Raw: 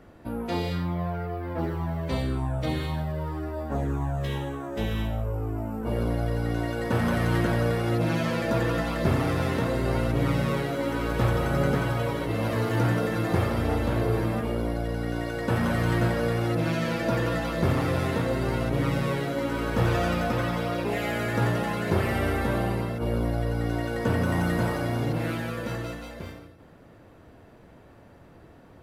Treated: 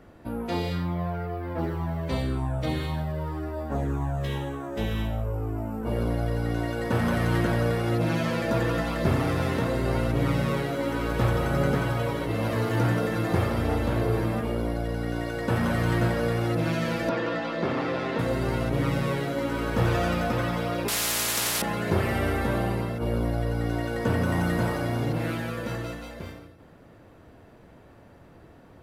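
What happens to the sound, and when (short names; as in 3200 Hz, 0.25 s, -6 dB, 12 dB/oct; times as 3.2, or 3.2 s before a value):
17.09–18.19 three-band isolator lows -23 dB, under 170 Hz, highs -23 dB, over 5500 Hz
20.88–21.62 spectral compressor 10:1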